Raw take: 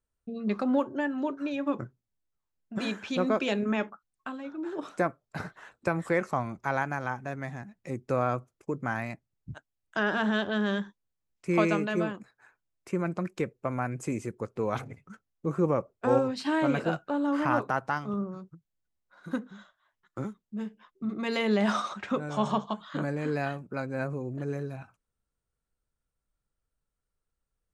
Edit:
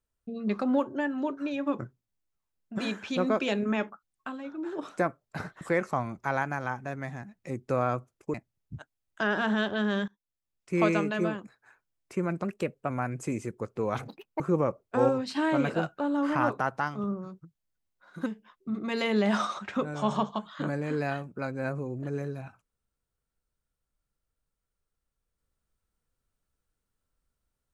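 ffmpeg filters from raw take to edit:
ffmpeg -i in.wav -filter_complex "[0:a]asplit=9[link_01][link_02][link_03][link_04][link_05][link_06][link_07][link_08][link_09];[link_01]atrim=end=5.612[link_10];[link_02]atrim=start=6.008:end=8.742[link_11];[link_03]atrim=start=9.098:end=10.84,asetpts=PTS-STARTPTS,afade=type=out:start_time=1.738:duration=0.004:curve=hsin:silence=0.0841395[link_12];[link_04]atrim=start=10.84:end=13.204,asetpts=PTS-STARTPTS,afade=type=in:duration=0.71:silence=0.0841395[link_13];[link_05]atrim=start=13.2:end=13.7,asetpts=PTS-STARTPTS,asetrate=48069,aresample=44100,atrim=end_sample=20229,asetpts=PTS-STARTPTS[link_14];[link_06]atrim=start=13.696:end=14.884[link_15];[link_07]atrim=start=14.88:end=15.5,asetpts=PTS-STARTPTS,asetrate=84672,aresample=44100[link_16];[link_08]atrim=start=15.496:end=19.362[link_17];[link_09]atrim=start=20.608[link_18];[link_10][link_11]acrossfade=duration=0.004:curve1=hsin:curve2=hsin[link_19];[link_12][link_13]concat=n=2:v=0:a=1[link_20];[link_19][link_20]acrossfade=duration=0.004:curve1=hsin:curve2=hsin[link_21];[link_21][link_14]acrossfade=duration=0.004:curve1=hsin:curve2=hsin[link_22];[link_22][link_15]acrossfade=duration=0.004:curve1=hsin:curve2=hsin[link_23];[link_23][link_16]acrossfade=duration=0.004:curve1=hsin:curve2=hsin[link_24];[link_24][link_17]acrossfade=duration=0.004:curve1=hsin:curve2=hsin[link_25];[link_25][link_18]acrossfade=duration=0.004:curve1=hsin:curve2=hsin" out.wav

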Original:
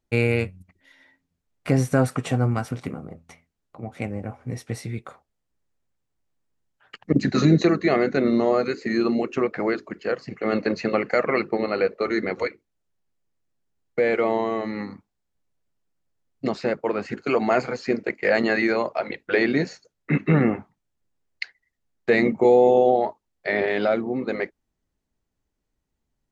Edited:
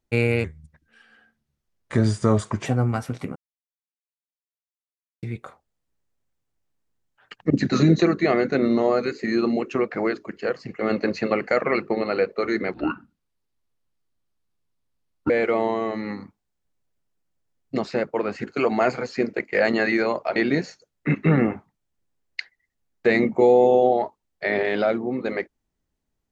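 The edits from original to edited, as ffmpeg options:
ffmpeg -i in.wav -filter_complex "[0:a]asplit=8[link_01][link_02][link_03][link_04][link_05][link_06][link_07][link_08];[link_01]atrim=end=0.444[link_09];[link_02]atrim=start=0.44:end=2.28,asetpts=PTS-STARTPTS,asetrate=36603,aresample=44100[link_10];[link_03]atrim=start=2.276:end=2.98,asetpts=PTS-STARTPTS,afade=type=out:start_time=0.7:duration=0.004:curve=hsin[link_11];[link_04]atrim=start=2.98:end=4.85,asetpts=PTS-STARTPTS,volume=0[link_12];[link_05]atrim=start=4.85:end=12.364,asetpts=PTS-STARTPTS,afade=type=in:duration=0.004:curve=hsin[link_13];[link_06]atrim=start=12.36:end=14,asetpts=PTS-STARTPTS,asetrate=28224,aresample=44100,atrim=end_sample=113006,asetpts=PTS-STARTPTS[link_14];[link_07]atrim=start=13.996:end=19.062[link_15];[link_08]atrim=start=19.388[link_16];[link_09][link_10]acrossfade=duration=0.004:curve1=hsin:curve2=hsin[link_17];[link_11][link_12][link_13]concat=n=3:v=0:a=1[link_18];[link_17][link_18]acrossfade=duration=0.004:curve1=hsin:curve2=hsin[link_19];[link_19][link_14]acrossfade=duration=0.004:curve1=hsin:curve2=hsin[link_20];[link_20][link_15]acrossfade=duration=0.004:curve1=hsin:curve2=hsin[link_21];[link_21][link_16]acrossfade=duration=0.004:curve1=hsin:curve2=hsin" out.wav

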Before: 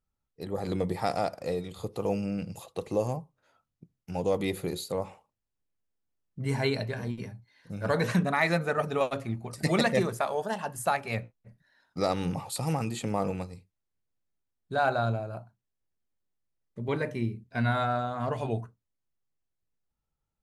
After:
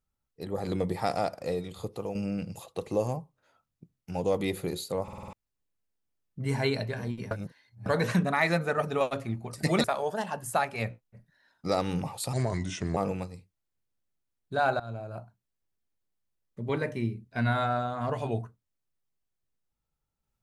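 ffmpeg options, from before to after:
ffmpeg -i in.wav -filter_complex "[0:a]asplit=14[link_01][link_02][link_03][link_04][link_05][link_06][link_07][link_08][link_09][link_10][link_11][link_12][link_13][link_14];[link_01]atrim=end=2.15,asetpts=PTS-STARTPTS,afade=type=out:start_time=1.74:duration=0.41:curve=qsin:silence=0.316228[link_15];[link_02]atrim=start=2.15:end=5.082,asetpts=PTS-STARTPTS,afade=type=in:duration=0.004:curve=hsin:silence=0.316228[link_16];[link_03]atrim=start=5.028:end=5.082[link_17];[link_04]atrim=start=5.028:end=5.082[link_18];[link_05]atrim=start=5.028:end=5.082[link_19];[link_06]atrim=start=5.028:end=5.082[link_20];[link_07]atrim=start=5.028:end=5.082[link_21];[link_08]atrim=start=5.328:end=7.312[link_22];[link_09]atrim=start=7.308:end=7.862,asetpts=PTS-STARTPTS,areverse[link_23];[link_10]atrim=start=7.858:end=9.842[link_24];[link_11]atrim=start=10.158:end=12.654[link_25];[link_12]atrim=start=12.65:end=13.16,asetpts=PTS-STARTPTS,asetrate=35280,aresample=44100[link_26];[link_13]atrim=start=13.156:end=14.99,asetpts=PTS-STARTPTS,afade=type=out:start_time=1.83:duration=0.004:curve=hsin:silence=0.0841395[link_27];[link_14]atrim=start=14.99,asetpts=PTS-STARTPTS,afade=type=in:duration=0.4:silence=0.0841395[link_28];[link_15][link_16]concat=n=2:v=0:a=1[link_29];[link_29][link_17]acrossfade=duration=0.004:curve1=hsin:curve2=hsin[link_30];[link_30][link_18]acrossfade=duration=0.004:curve1=hsin:curve2=hsin[link_31];[link_31][link_19]acrossfade=duration=0.004:curve1=hsin:curve2=hsin[link_32];[link_32][link_20]acrossfade=duration=0.004:curve1=hsin:curve2=hsin[link_33];[link_33][link_21]acrossfade=duration=0.004:curve1=hsin:curve2=hsin[link_34];[link_34][link_22]acrossfade=duration=0.004:curve1=hsin:curve2=hsin[link_35];[link_35][link_23]acrossfade=duration=0.004:curve1=hsin:curve2=hsin[link_36];[link_36][link_24]acrossfade=duration=0.004:curve1=hsin:curve2=hsin[link_37];[link_37][link_25]acrossfade=duration=0.004:curve1=hsin:curve2=hsin[link_38];[link_38][link_26]acrossfade=duration=0.004:curve1=hsin:curve2=hsin[link_39];[link_27][link_28]concat=n=2:v=0:a=1[link_40];[link_39][link_40]acrossfade=duration=0.004:curve1=hsin:curve2=hsin" out.wav

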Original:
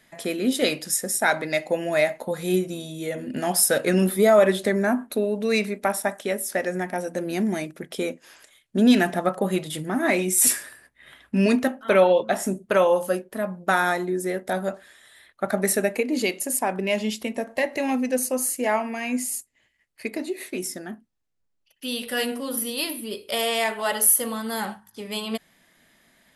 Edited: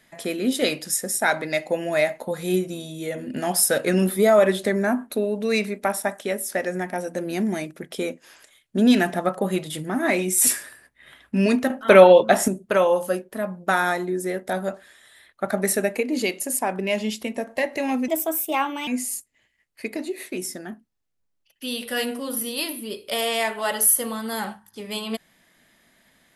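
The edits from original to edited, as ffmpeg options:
ffmpeg -i in.wav -filter_complex "[0:a]asplit=5[link_01][link_02][link_03][link_04][link_05];[link_01]atrim=end=11.702[link_06];[link_02]atrim=start=11.698:end=12.482,asetpts=PTS-STARTPTS,volume=6.5dB[link_07];[link_03]atrim=start=12.478:end=18.084[link_08];[link_04]atrim=start=18.08:end=19.08,asetpts=PTS-STARTPTS,asetrate=55566,aresample=44100[link_09];[link_05]atrim=start=19.076[link_10];[link_06][link_07]acrossfade=duration=0.004:curve1=hsin:curve2=hsin[link_11];[link_11][link_08]acrossfade=duration=0.004:curve1=hsin:curve2=hsin[link_12];[link_12][link_09]acrossfade=duration=0.004:curve1=hsin:curve2=hsin[link_13];[link_13][link_10]acrossfade=duration=0.004:curve1=hsin:curve2=hsin" out.wav

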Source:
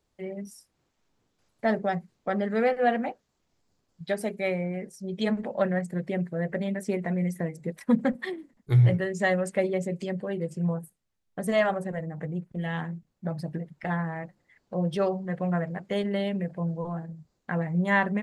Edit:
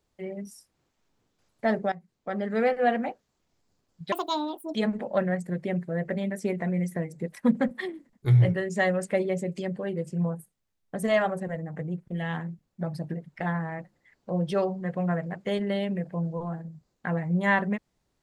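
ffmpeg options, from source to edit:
ffmpeg -i in.wav -filter_complex "[0:a]asplit=4[link_01][link_02][link_03][link_04];[link_01]atrim=end=1.92,asetpts=PTS-STARTPTS,afade=type=out:start_time=1.916:duration=0.004:curve=hsin:silence=0.158489[link_05];[link_02]atrim=start=1.92:end=4.124,asetpts=PTS-STARTPTS,afade=type=in:duration=0.69:silence=0.158489[link_06];[link_03]atrim=start=4.12:end=5.19,asetpts=PTS-STARTPTS,asetrate=74970,aresample=44100,atrim=end_sample=27757,asetpts=PTS-STARTPTS[link_07];[link_04]atrim=start=5.186[link_08];[link_05][link_06]concat=n=2:v=0:a=1[link_09];[link_09][link_07]acrossfade=duration=0.004:curve1=hsin:curve2=hsin[link_10];[link_10][link_08]acrossfade=duration=0.004:curve1=hsin:curve2=hsin" out.wav

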